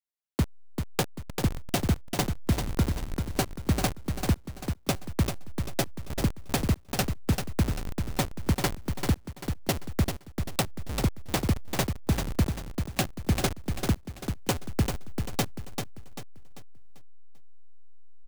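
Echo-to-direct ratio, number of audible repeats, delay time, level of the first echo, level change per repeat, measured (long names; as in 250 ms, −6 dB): −5.5 dB, 4, 392 ms, −6.0 dB, −8.5 dB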